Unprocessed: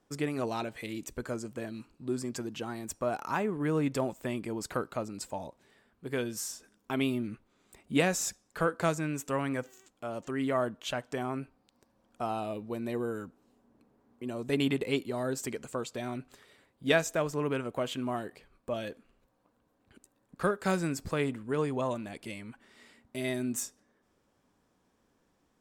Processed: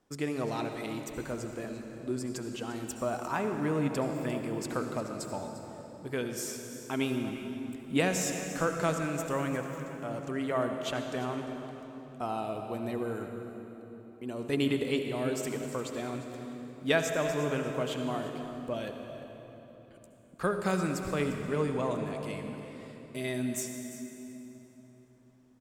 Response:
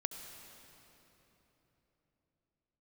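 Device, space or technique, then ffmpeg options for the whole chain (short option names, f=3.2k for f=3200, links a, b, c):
cave: -filter_complex "[0:a]aecho=1:1:349:0.178[a];[1:a]atrim=start_sample=2205[b];[a][b]afir=irnorm=-1:irlink=0"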